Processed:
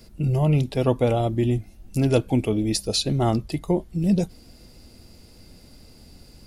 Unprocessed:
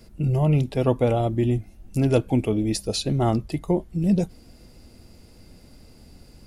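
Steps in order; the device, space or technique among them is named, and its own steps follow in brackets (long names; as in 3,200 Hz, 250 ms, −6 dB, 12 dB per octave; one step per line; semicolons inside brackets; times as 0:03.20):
presence and air boost (parametric band 4,300 Hz +4 dB 1.1 octaves; high-shelf EQ 9,800 Hz +5 dB)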